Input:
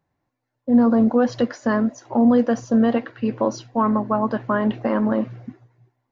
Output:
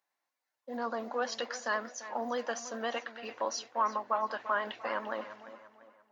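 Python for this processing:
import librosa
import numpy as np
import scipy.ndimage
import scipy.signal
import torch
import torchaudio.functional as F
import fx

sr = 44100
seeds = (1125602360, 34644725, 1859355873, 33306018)

y = fx.echo_tape(x, sr, ms=344, feedback_pct=41, wet_db=-11.0, lp_hz=3100.0, drive_db=12.0, wow_cents=11)
y = fx.vibrato(y, sr, rate_hz=9.8, depth_cents=35.0)
y = scipy.signal.sosfilt(scipy.signal.butter(2, 740.0, 'highpass', fs=sr, output='sos'), y)
y = fx.high_shelf(y, sr, hz=2300.0, db=9.5)
y = F.gain(torch.from_numpy(y), -7.5).numpy()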